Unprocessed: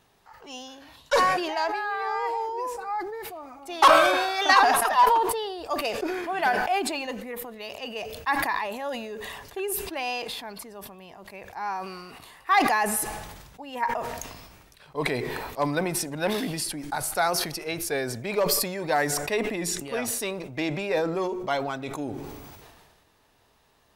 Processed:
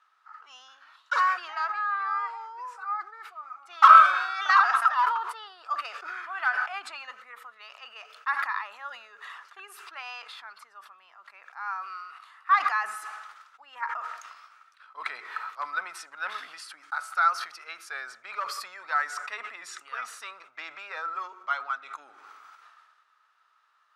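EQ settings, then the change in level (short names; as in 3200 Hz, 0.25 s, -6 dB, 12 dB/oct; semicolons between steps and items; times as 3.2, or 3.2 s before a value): resonant high-pass 1300 Hz, resonance Q 11; air absorption 70 m; -8.5 dB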